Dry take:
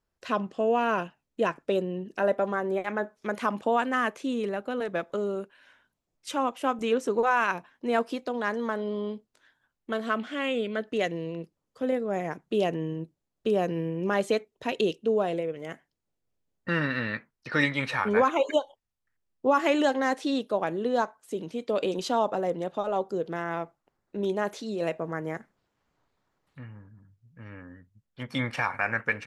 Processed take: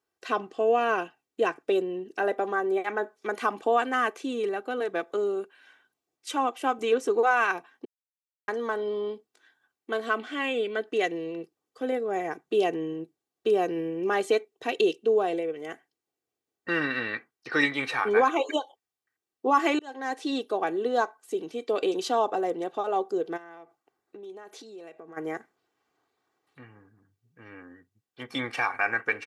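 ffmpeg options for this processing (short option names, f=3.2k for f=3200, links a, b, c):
-filter_complex "[0:a]asplit=3[a][b][c];[a]afade=t=out:st=23.36:d=0.02[d];[b]acompressor=threshold=-43dB:ratio=5:attack=3.2:release=140:knee=1:detection=peak,afade=t=in:st=23.36:d=0.02,afade=t=out:st=25.16:d=0.02[e];[c]afade=t=in:st=25.16:d=0.02[f];[d][e][f]amix=inputs=3:normalize=0,asplit=4[g][h][i][j];[g]atrim=end=7.85,asetpts=PTS-STARTPTS,afade=t=out:st=7.846:d=0.004:c=hsin[k];[h]atrim=start=7.85:end=8.48,asetpts=PTS-STARTPTS,volume=0[l];[i]atrim=start=8.48:end=19.79,asetpts=PTS-STARTPTS,afade=t=in:d=0.004:c=hsin,afade=t=out:st=11.306:d=0.004:c=hsin[m];[j]atrim=start=19.79,asetpts=PTS-STARTPTS,afade=t=in:d=0.6[n];[k][l][m][n]concat=n=4:v=0:a=1,highpass=210,aecho=1:1:2.6:0.58"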